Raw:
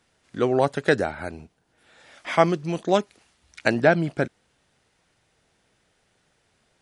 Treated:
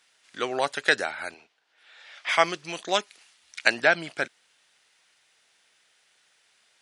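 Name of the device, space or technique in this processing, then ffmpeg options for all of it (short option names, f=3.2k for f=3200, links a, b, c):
filter by subtraction: -filter_complex "[0:a]asplit=2[a][b];[b]lowpass=2.8k,volume=-1[c];[a][c]amix=inputs=2:normalize=0,asettb=1/sr,asplit=3[d][e][f];[d]atrim=end=1.344[g];[e]atrim=start=1.34:end=2.29,asetpts=PTS-STARTPTS,afade=t=in:d=0.004:c=qsin,afade=t=out:st=0.946:d=0.004:c=qsin,acrossover=split=310 5500:gain=0.224 1 0.158[h][i][j];[h][i][j]amix=inputs=3:normalize=0[k];[f]atrim=start=2.286[l];[g][k]acrossfade=d=0.004:c1=hsin:c2=qsin[m];[m][l]acrossfade=d=0.004:c1=qsin:c2=hsin,volume=4.5dB"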